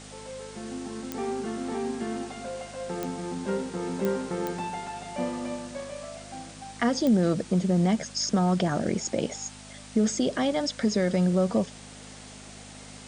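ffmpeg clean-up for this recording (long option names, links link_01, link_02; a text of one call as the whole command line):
ffmpeg -i in.wav -af "adeclick=threshold=4,bandreject=frequency=51.3:width_type=h:width=4,bandreject=frequency=102.6:width_type=h:width=4,bandreject=frequency=153.9:width_type=h:width=4,bandreject=frequency=205.2:width_type=h:width=4,bandreject=frequency=256.5:width_type=h:width=4,afftdn=noise_reduction=27:noise_floor=-45" out.wav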